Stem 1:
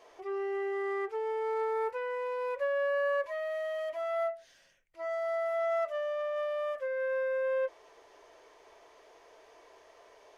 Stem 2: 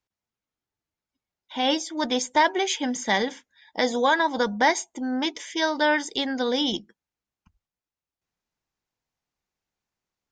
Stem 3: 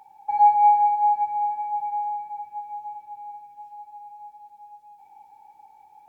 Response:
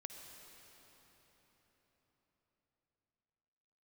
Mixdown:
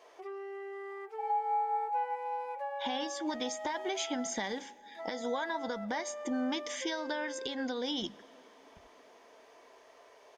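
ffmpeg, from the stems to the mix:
-filter_complex "[0:a]highpass=frequency=250:poles=1,acompressor=threshold=-41dB:ratio=6,volume=0dB[link_01];[1:a]acompressor=threshold=-32dB:ratio=6,adelay=1300,volume=-0.5dB,asplit=2[link_02][link_03];[link_03]volume=-15dB[link_04];[2:a]highpass=730,adelay=900,volume=-11dB[link_05];[3:a]atrim=start_sample=2205[link_06];[link_04][link_06]afir=irnorm=-1:irlink=0[link_07];[link_01][link_02][link_05][link_07]amix=inputs=4:normalize=0,alimiter=level_in=0.5dB:limit=-24dB:level=0:latency=1:release=192,volume=-0.5dB"

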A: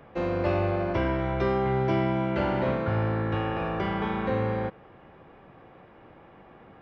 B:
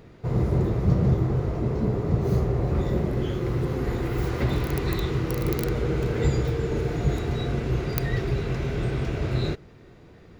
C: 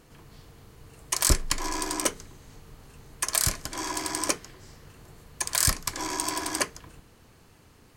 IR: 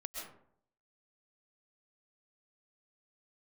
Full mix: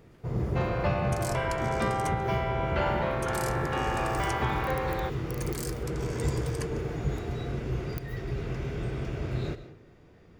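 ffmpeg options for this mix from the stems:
-filter_complex "[0:a]highpass=frequency=570:width=0.5412,highpass=frequency=570:width=1.3066,adelay=400,volume=2.5dB[link_01];[1:a]bandreject=frequency=4000:width=11,volume=-8.5dB,asplit=2[link_02][link_03];[link_03]volume=-6dB[link_04];[2:a]volume=-15.5dB,asplit=2[link_05][link_06];[link_06]volume=-17.5dB[link_07];[3:a]atrim=start_sample=2205[link_08];[link_04][link_07]amix=inputs=2:normalize=0[link_09];[link_09][link_08]afir=irnorm=-1:irlink=0[link_10];[link_01][link_02][link_05][link_10]amix=inputs=4:normalize=0,alimiter=limit=-17dB:level=0:latency=1:release=464"

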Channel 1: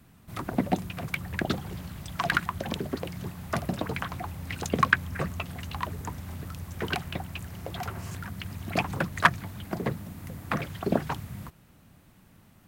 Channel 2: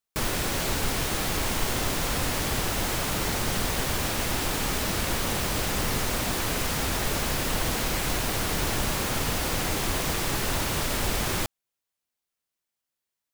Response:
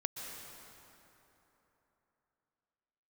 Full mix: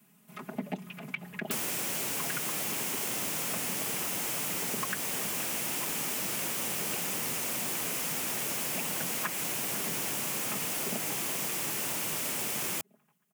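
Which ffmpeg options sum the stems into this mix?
-filter_complex "[0:a]acrossover=split=4100[link_01][link_02];[link_02]acompressor=threshold=-58dB:ratio=4:attack=1:release=60[link_03];[link_01][link_03]amix=inputs=2:normalize=0,aecho=1:1:4.8:1,volume=-10dB,asplit=2[link_04][link_05];[link_05]volume=-17dB[link_06];[1:a]adelay=1350,volume=-3dB[link_07];[link_06]aecho=0:1:496|992|1488|1984|2480|2976|3472|3968:1|0.52|0.27|0.141|0.0731|0.038|0.0198|0.0103[link_08];[link_04][link_07][link_08]amix=inputs=3:normalize=0,highpass=frequency=140:width=0.5412,highpass=frequency=140:width=1.3066,aexciter=amount=1.3:drive=6.5:freq=2200,acompressor=threshold=-30dB:ratio=6"

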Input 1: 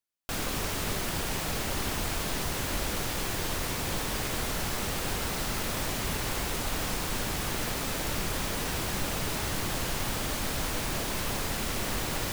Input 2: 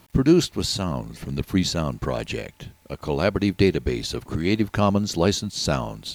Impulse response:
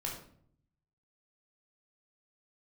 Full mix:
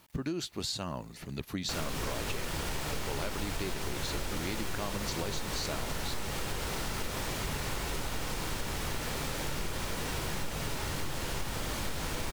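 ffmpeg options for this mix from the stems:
-filter_complex "[0:a]highshelf=frequency=12000:gain=-7,adelay=1400,volume=-3.5dB,asplit=2[link_01][link_02];[link_02]volume=-7dB[link_03];[1:a]lowshelf=frequency=460:gain=-7,acompressor=threshold=-25dB:ratio=3,volume=-5dB[link_04];[2:a]atrim=start_sample=2205[link_05];[link_03][link_05]afir=irnorm=-1:irlink=0[link_06];[link_01][link_04][link_06]amix=inputs=3:normalize=0,acompressor=threshold=-30dB:ratio=6"

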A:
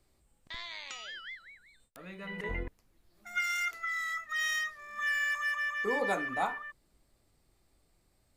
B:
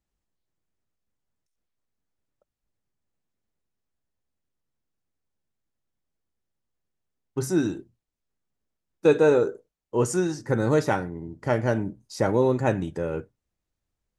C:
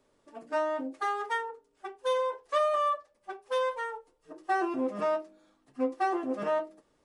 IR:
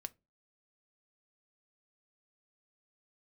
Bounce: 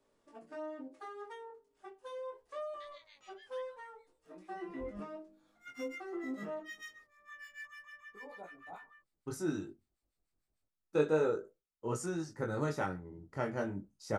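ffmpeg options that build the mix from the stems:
-filter_complex "[0:a]acrossover=split=990[link_01][link_02];[link_01]aeval=exprs='val(0)*(1-1/2+1/2*cos(2*PI*6.7*n/s))':channel_layout=same[link_03];[link_02]aeval=exprs='val(0)*(1-1/2-1/2*cos(2*PI*6.7*n/s))':channel_layout=same[link_04];[link_03][link_04]amix=inputs=2:normalize=0,adelay=2300,volume=-10.5dB[link_05];[1:a]equalizer=frequency=1300:width=7.2:gain=8,adelay=1900,volume=-11.5dB,asplit=2[link_06][link_07];[link_07]volume=-4.5dB[link_08];[2:a]acrossover=split=390[link_09][link_10];[link_10]acompressor=threshold=-47dB:ratio=2.5[link_11];[link_09][link_11]amix=inputs=2:normalize=0,volume=-5dB,asplit=2[link_12][link_13];[link_13]volume=-6.5dB[link_14];[3:a]atrim=start_sample=2205[link_15];[link_08][link_14]amix=inputs=2:normalize=0[link_16];[link_16][link_15]afir=irnorm=-1:irlink=0[link_17];[link_05][link_06][link_12][link_17]amix=inputs=4:normalize=0,flanger=delay=17.5:depth=4.6:speed=0.34"

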